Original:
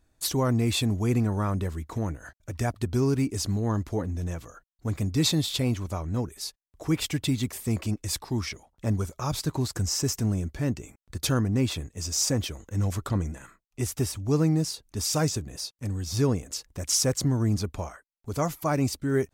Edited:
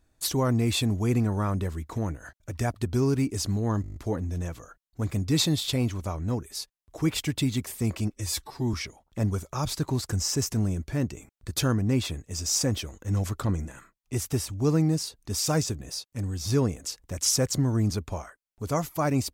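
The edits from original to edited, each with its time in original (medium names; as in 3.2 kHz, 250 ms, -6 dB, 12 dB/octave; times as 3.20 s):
3.82 s: stutter 0.02 s, 8 plays
8.01–8.40 s: stretch 1.5×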